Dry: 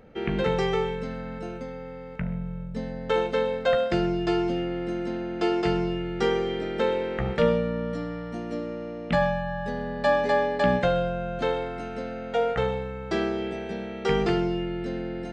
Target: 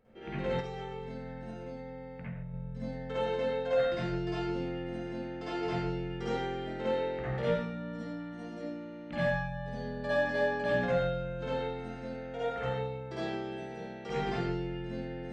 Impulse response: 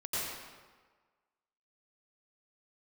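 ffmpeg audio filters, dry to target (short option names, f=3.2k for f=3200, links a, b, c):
-filter_complex "[1:a]atrim=start_sample=2205,afade=t=out:st=0.44:d=0.01,atrim=end_sample=19845,asetrate=74970,aresample=44100[a];[0:a][a]afir=irnorm=-1:irlink=0,asettb=1/sr,asplit=3[b][c][d];[b]atrim=end=0.604[e];[c]atrim=start=0.6:end=2.54,asetpts=PTS-STARTPTS,afade=t=in:d=0.004:c=qsin,afade=t=out:st=1.936:d=0.004:c=qsin,acompressor=threshold=-29dB:ratio=6[f];[d]atrim=start=2.536[g];[e][f]acrossfade=d=0.004:c1=hsin:c2=qsin[h];[h][g]acrossfade=d=0.004:c1=qsin:c2=hsin,volume=-7.5dB"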